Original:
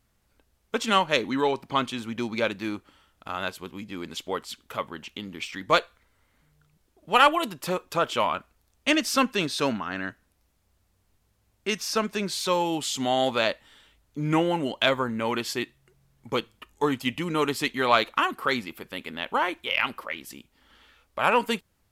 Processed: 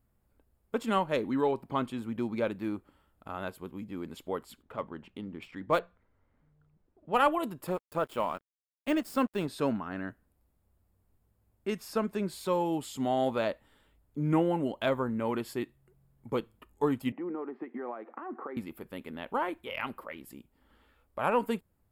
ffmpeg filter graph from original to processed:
-filter_complex "[0:a]asettb=1/sr,asplit=3[a][b][c];[a]atrim=end=4.624[d];[b]atrim=start=4.62:end=7.17,asetpts=PTS-STARTPTS,afade=t=in:d=0.004:c=qsin,afade=t=out:st=2.546:d=0.004:c=qsin,adynamicsmooth=sensitivity=3:basefreq=4.1k,bandreject=f=60:t=h:w=6,bandreject=f=120:t=h:w=6,bandreject=f=180:t=h:w=6[e];[c]atrim=start=7.166[f];[d][e]acrossfade=d=0.004:c1=hsin:c2=qsin[g];[g][f]acrossfade=d=0.004:c1=qsin:c2=hsin,asettb=1/sr,asplit=3[h][i][j];[h]atrim=end=7.674[k];[i]atrim=start=7.67:end=9.48,asetpts=PTS-STARTPTS,afade=t=in:d=0.004:c=qsin,afade=t=out:st=1.806:d=0.004:c=qsin,deesser=0.5,aeval=exprs='sgn(val(0))*max(abs(val(0))-0.0112,0)':c=same[l];[j]atrim=start=9.476[m];[k][l]acrossfade=d=0.004:c1=hsin:c2=qsin[n];[n][m]acrossfade=d=0.004:c1=qsin:c2=hsin,asettb=1/sr,asplit=3[o][p][q];[o]atrim=end=17.124[r];[p]atrim=start=17.12:end=18.57,asetpts=PTS-STARTPTS,afade=t=in:d=0.004:c=qsin,afade=t=out:st=1.446:d=0.004:c=qsin,acompressor=threshold=-34dB:ratio=12:attack=3.2:release=140:knee=1:detection=peak,highpass=f=230:w=0.5412,highpass=f=230:w=1.3066,equalizer=f=230:t=q:w=4:g=6,equalizer=f=350:t=q:w=4:g=9,equalizer=f=500:t=q:w=4:g=4,equalizer=f=770:t=q:w=4:g=9,equalizer=f=1.2k:t=q:w=4:g=3,equalizer=f=1.9k:t=q:w=4:g=4,lowpass=f=2k:w=0.5412,lowpass=f=2k:w=1.3066[s];[q]atrim=start=18.566[t];[r][s]acrossfade=d=0.004:c1=hsin:c2=qsin[u];[u][t]acrossfade=d=0.004:c1=qsin:c2=hsin,equalizer=f=4.1k:w=0.37:g=-14.5,bandreject=f=6k:w=6,volume=-1.5dB"

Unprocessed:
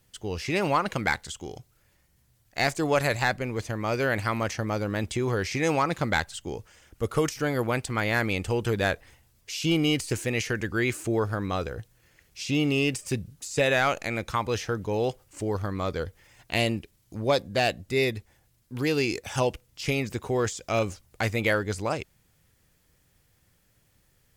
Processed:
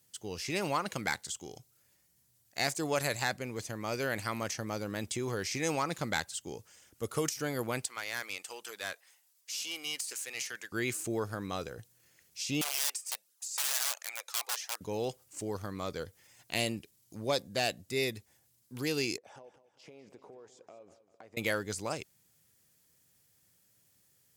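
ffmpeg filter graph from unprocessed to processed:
-filter_complex "[0:a]asettb=1/sr,asplit=3[a][b][c];[a]atrim=end=7.874[d];[b]atrim=start=7.87:end=10.72,asetpts=PTS-STARTPTS,afade=t=in:d=0.004:c=qsin,afade=t=out:st=2.846:d=0.004:c=qsin,highpass=820,aeval=exprs='(tanh(10*val(0)+0.5)-tanh(0.5))/10':c=same[e];[c]atrim=start=10.716[f];[d][e]acrossfade=d=0.004:c1=hsin:c2=qsin[g];[g][f]acrossfade=d=0.004:c1=qsin:c2=hsin,asettb=1/sr,asplit=3[h][i][j];[h]atrim=end=12.614[k];[i]atrim=start=12.61:end=14.81,asetpts=PTS-STARTPTS,afade=t=in:d=0.004:c=qsin,afade=t=out:st=2.196:d=0.004:c=qsin,flanger=delay=0.5:depth=2.4:regen=-5:speed=1.4:shape=triangular,aeval=exprs='(mod(15.8*val(0)+1,2)-1)/15.8':c=same,highpass=f=630:w=0.5412,highpass=f=630:w=1.3066[l];[j]atrim=start=14.806[m];[k][l]acrossfade=d=0.004:c1=hsin:c2=qsin[n];[n][m]acrossfade=d=0.004:c1=qsin:c2=hsin,asettb=1/sr,asplit=3[o][p][q];[o]atrim=end=19.174[r];[p]atrim=start=19.17:end=21.37,asetpts=PTS-STARTPTS,afade=t=in:d=0.004:c=qsin,afade=t=out:st=2.196:d=0.004:c=qsin,bandpass=f=560:t=q:w=1.3,acompressor=threshold=-40dB:ratio=20:attack=3.2:release=140:knee=1:detection=peak,aecho=1:1:197|394|591|788:0.2|0.0878|0.0386|0.017,atrim=end_sample=97020[s];[q]atrim=start=21.366[t];[r][s]acrossfade=d=0.004:c1=hsin:c2=qsin[u];[u][t]acrossfade=d=0.004:c1=qsin:c2=hsin,highpass=120,bass=f=250:g=1,treble=f=4k:g=10,volume=-8dB"

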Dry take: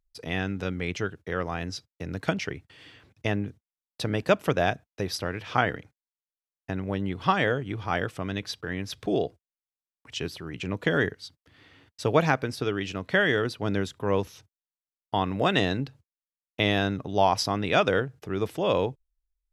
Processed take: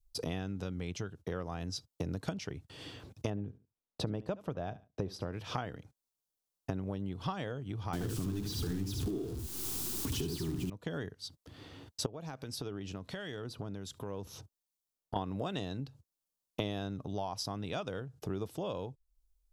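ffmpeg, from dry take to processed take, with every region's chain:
-filter_complex "[0:a]asettb=1/sr,asplit=3[a][b][c];[a]atrim=end=3.304[d];[b]atrim=start=3.3:end=5.33,asetpts=PTS-STARTPTS,afade=t=in:d=0.004:c=qsin,afade=t=out:st=2.026:d=0.004:c=qsin,lowpass=f=1.5k:p=1,aecho=1:1:71|142:0.106|0.0191,atrim=end_sample=89523[e];[c]atrim=start=5.326[f];[d][e]acrossfade=d=0.004:c1=hsin:c2=qsin[g];[g][f]acrossfade=d=0.004:c1=qsin:c2=hsin,asettb=1/sr,asplit=3[h][i][j];[h]atrim=end=7.934[k];[i]atrim=start=7.93:end=10.7,asetpts=PTS-STARTPTS,afade=t=in:d=0.004:c=qsin,afade=t=out:st=2.766:d=0.004:c=qsin,aeval=exprs='val(0)+0.5*0.0531*sgn(val(0))':c=same,lowshelf=f=450:t=q:w=3:g=7,aecho=1:1:74:0.668,atrim=end_sample=122157[l];[j]atrim=start=10.696[m];[k][l]acrossfade=d=0.004:c1=hsin:c2=qsin[n];[n][m]acrossfade=d=0.004:c1=qsin:c2=hsin,asettb=1/sr,asplit=3[o][p][q];[o]atrim=end=12.064[r];[p]atrim=start=12.06:end=15.16,asetpts=PTS-STARTPTS,afade=t=in:d=0.004:c=qsin,afade=t=out:st=3.096:d=0.004:c=qsin,acompressor=threshold=-43dB:ratio=2.5:attack=3.2:release=140:knee=1:detection=peak,acrossover=split=1800[s][t];[s]aeval=exprs='val(0)*(1-0.5/2+0.5/2*cos(2*PI*1.3*n/s))':c=same[u];[t]aeval=exprs='val(0)*(1-0.5/2-0.5/2*cos(2*PI*1.3*n/s))':c=same[v];[u][v]amix=inputs=2:normalize=0[w];[q]atrim=start=15.156[x];[r][w]acrossfade=d=0.004:c1=hsin:c2=qsin[y];[y][x]acrossfade=d=0.004:c1=qsin:c2=hsin,equalizer=f=2k:w=1.1:g=-12.5,acompressor=threshold=-42dB:ratio=5,adynamicequalizer=threshold=0.00141:dfrequency=410:dqfactor=0.72:tfrequency=410:tqfactor=0.72:attack=5:release=100:ratio=0.375:range=3:mode=cutabove:tftype=bell,volume=8dB"

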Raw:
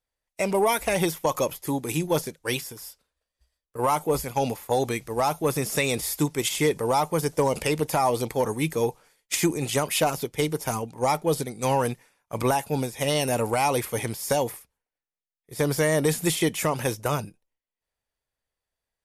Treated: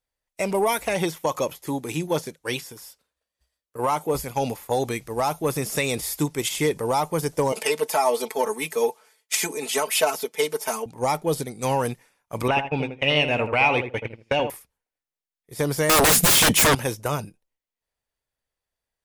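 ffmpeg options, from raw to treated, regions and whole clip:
-filter_complex "[0:a]asettb=1/sr,asplit=3[a][b][c];[a]atrim=end=0.804[d];[b]atrim=start=0.8:end=4.15,asetpts=PTS-STARTPTS,afade=t=in:d=0.004:c=qsin,afade=t=out:st=3.346:d=0.004:c=qsin,highpass=f=98:p=1,bandreject=f=4.9k:w=29,acrossover=split=7600[e][f];[f]acompressor=threshold=-42dB:ratio=4:attack=1:release=60[g];[e][g]amix=inputs=2:normalize=0[h];[c]atrim=start=4.146[i];[d][h]acrossfade=d=0.004:c1=hsin:c2=qsin[j];[j][i]acrossfade=d=0.004:c1=qsin:c2=hsin,asettb=1/sr,asplit=3[k][l][m];[k]atrim=end=7.524[n];[l]atrim=start=7.52:end=10.86,asetpts=PTS-STARTPTS,afade=t=in:d=0.004:c=qsin,afade=t=out:st=3.336:d=0.004:c=qsin,highpass=400,aecho=1:1:4.6:0.96,atrim=end_sample=147294[o];[m]atrim=start=10.856[p];[n][o]acrossfade=d=0.004:c1=hsin:c2=qsin[q];[q][p]acrossfade=d=0.004:c1=qsin:c2=hsin,asettb=1/sr,asplit=3[r][s][t];[r]atrim=end=12.484[u];[s]atrim=start=12.48:end=14.5,asetpts=PTS-STARTPTS,afade=t=in:d=0.004:c=qsin,afade=t=out:st=2.016:d=0.004:c=qsin,agate=range=-27dB:threshold=-28dB:ratio=16:release=100:detection=peak,lowpass=f=2.6k:t=q:w=5.4,asplit=2[v][w];[w]adelay=80,lowpass=f=1.3k:p=1,volume=-7dB,asplit=2[x][y];[y]adelay=80,lowpass=f=1.3k:p=1,volume=0.2,asplit=2[z][aa];[aa]adelay=80,lowpass=f=1.3k:p=1,volume=0.2[ab];[v][x][z][ab]amix=inputs=4:normalize=0,atrim=end_sample=89082[ac];[t]atrim=start=14.496[ad];[u][ac]acrossfade=d=0.004:c1=hsin:c2=qsin[ae];[ae][ad]acrossfade=d=0.004:c1=qsin:c2=hsin,asettb=1/sr,asplit=3[af][ag][ah];[af]atrim=end=15.894[ai];[ag]atrim=start=15.89:end=16.75,asetpts=PTS-STARTPTS,afade=t=in:d=0.004:c=qsin,afade=t=out:st=0.856:d=0.004:c=qsin,agate=range=-33dB:threshold=-29dB:ratio=3:release=100:detection=peak,equalizer=f=930:w=0.64:g=-6,aeval=exprs='0.224*sin(PI/2*7.08*val(0)/0.224)':c=same[aj];[ah]atrim=start=16.746[ak];[ai][aj]acrossfade=d=0.004:c1=hsin:c2=qsin[al];[al][ak]acrossfade=d=0.004:c1=qsin:c2=hsin"

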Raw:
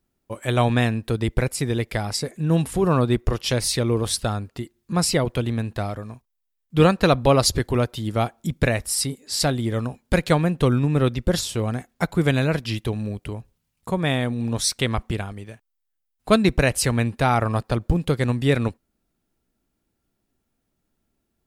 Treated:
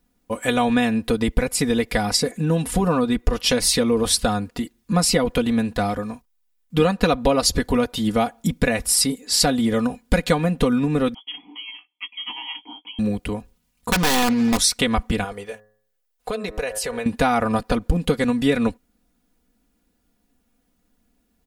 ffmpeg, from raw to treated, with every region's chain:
-filter_complex "[0:a]asettb=1/sr,asplit=3[a][b][c];[a]atrim=end=11.144[d];[b]atrim=start=11.14:end=12.99,asetpts=PTS-STARTPTS,afade=t=in:d=0.004:c=qsin,afade=t=out:st=1.846:d=0.004:c=qsin,lowpass=f=2.9k:t=q:w=0.5098,lowpass=f=2.9k:t=q:w=0.6013,lowpass=f=2.9k:t=q:w=0.9,lowpass=f=2.9k:t=q:w=2.563,afreqshift=-3400,asplit=3[e][f][g];[e]bandpass=f=300:t=q:w=8,volume=0dB[h];[f]bandpass=f=870:t=q:w=8,volume=-6dB[i];[g]bandpass=f=2.24k:t=q:w=8,volume=-9dB[j];[h][i][j]amix=inputs=3:normalize=0,asplit=2[k][l];[l]adelay=17,volume=-10dB[m];[k][m]amix=inputs=2:normalize=0,atrim=end_sample=81585[n];[c]atrim=start=12.986[o];[d][n]acrossfade=d=0.004:c1=hsin:c2=qsin[p];[p][o]acrossfade=d=0.004:c1=qsin:c2=hsin,asettb=1/sr,asplit=3[q][r][s];[q]atrim=end=13.914[t];[r]atrim=start=13.91:end=14.58,asetpts=PTS-STARTPTS,afade=t=in:d=0.004:c=qsin,afade=t=out:st=0.666:d=0.004:c=qsin,lowpass=3.2k,acrusher=bits=5:mix=0:aa=0.5,aeval=exprs='(mod(7.08*val(0)+1,2)-1)/7.08':c=same[u];[s]atrim=start=14.576[v];[t][u]acrossfade=d=0.004:c1=hsin:c2=qsin[w];[w][v]acrossfade=d=0.004:c1=qsin:c2=hsin,asettb=1/sr,asplit=3[x][y][z];[x]atrim=end=15.244[aa];[y]atrim=start=15.24:end=17.06,asetpts=PTS-STARTPTS,afade=t=in:d=0.004:c=qsin,afade=t=out:st=1.816:d=0.004:c=qsin,lowshelf=f=350:t=q:w=3:g=-6.5,bandreject=f=106.2:t=h:w=4,bandreject=f=212.4:t=h:w=4,bandreject=f=318.6:t=h:w=4,bandreject=f=424.8:t=h:w=4,bandreject=f=531:t=h:w=4,bandreject=f=637.2:t=h:w=4,bandreject=f=743.4:t=h:w=4,bandreject=f=849.6:t=h:w=4,bandreject=f=955.8:t=h:w=4,bandreject=f=1.062k:t=h:w=4,bandreject=f=1.1682k:t=h:w=4,bandreject=f=1.2744k:t=h:w=4,bandreject=f=1.3806k:t=h:w=4,bandreject=f=1.4868k:t=h:w=4,bandreject=f=1.593k:t=h:w=4,bandreject=f=1.6992k:t=h:w=4,bandreject=f=1.8054k:t=h:w=4,bandreject=f=1.9116k:t=h:w=4,acompressor=threshold=-32dB:ratio=4:attack=3.2:release=140:knee=1:detection=peak[ab];[z]atrim=start=17.056[ac];[aa][ab]acrossfade=d=0.004:c1=hsin:c2=qsin[ad];[ad][ac]acrossfade=d=0.004:c1=qsin:c2=hsin,acompressor=threshold=-21dB:ratio=6,aecho=1:1:4.1:0.79,volume=5dB"

